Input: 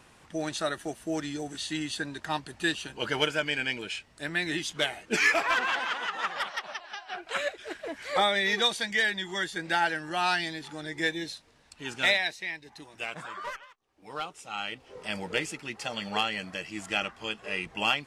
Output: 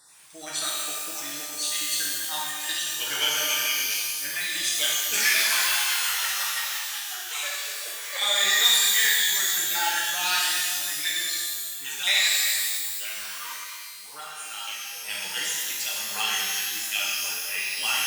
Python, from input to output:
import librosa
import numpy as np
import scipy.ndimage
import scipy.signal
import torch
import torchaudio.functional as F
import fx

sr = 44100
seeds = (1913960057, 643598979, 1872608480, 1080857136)

y = fx.spec_dropout(x, sr, seeds[0], share_pct=29)
y = librosa.effects.preemphasis(y, coef=0.97, zi=[0.0])
y = fx.rev_shimmer(y, sr, seeds[1], rt60_s=1.7, semitones=12, shimmer_db=-2, drr_db=-5.0)
y = y * 10.0 ** (8.5 / 20.0)